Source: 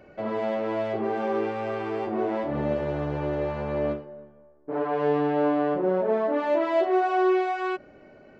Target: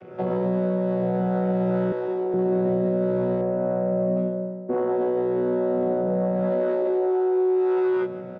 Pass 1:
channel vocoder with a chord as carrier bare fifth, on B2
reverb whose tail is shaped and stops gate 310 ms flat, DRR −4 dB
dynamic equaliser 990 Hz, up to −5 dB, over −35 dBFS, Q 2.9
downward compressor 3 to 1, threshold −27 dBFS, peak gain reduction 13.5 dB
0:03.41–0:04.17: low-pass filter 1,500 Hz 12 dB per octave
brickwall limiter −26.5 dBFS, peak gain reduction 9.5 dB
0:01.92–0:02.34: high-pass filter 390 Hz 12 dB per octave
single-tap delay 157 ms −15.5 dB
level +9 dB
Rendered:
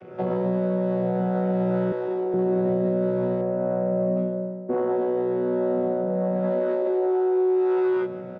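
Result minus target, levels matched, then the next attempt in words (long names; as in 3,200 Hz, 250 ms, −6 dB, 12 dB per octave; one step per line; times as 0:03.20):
downward compressor: peak gain reduction +13.5 dB
channel vocoder with a chord as carrier bare fifth, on B2
reverb whose tail is shaped and stops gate 310 ms flat, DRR −4 dB
dynamic equaliser 990 Hz, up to −5 dB, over −35 dBFS, Q 2.9
0:03.41–0:04.17: low-pass filter 1,500 Hz 12 dB per octave
brickwall limiter −26.5 dBFS, peak gain reduction 21.5 dB
0:01.92–0:02.34: high-pass filter 390 Hz 12 dB per octave
single-tap delay 157 ms −15.5 dB
level +9 dB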